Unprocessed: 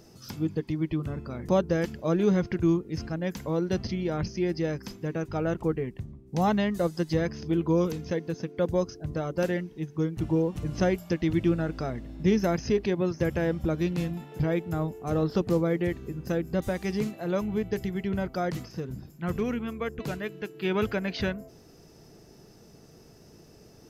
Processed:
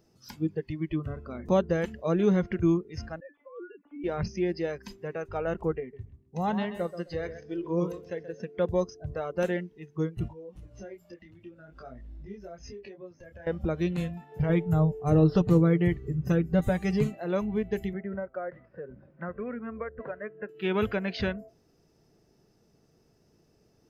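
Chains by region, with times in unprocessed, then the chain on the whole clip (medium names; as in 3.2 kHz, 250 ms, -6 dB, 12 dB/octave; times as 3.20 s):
3.20–4.04 s: formants replaced by sine waves + feedback comb 290 Hz, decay 0.25 s, mix 90%
5.80–8.40 s: flange 1 Hz, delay 5.4 ms, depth 8.8 ms, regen +83% + feedback delay 130 ms, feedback 23%, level -10 dB
10.28–13.47 s: compression 8:1, threshold -33 dBFS + detune thickener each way 17 cents
14.49–17.19 s: bass shelf 210 Hz +7.5 dB + comb 6.7 ms, depth 47%
17.93–20.49 s: four-pole ladder low-pass 2.1 kHz, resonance 35% + peaking EQ 560 Hz +10 dB 0.28 oct + three bands compressed up and down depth 100%
whole clip: spectral noise reduction 12 dB; treble shelf 5.5 kHz -4.5 dB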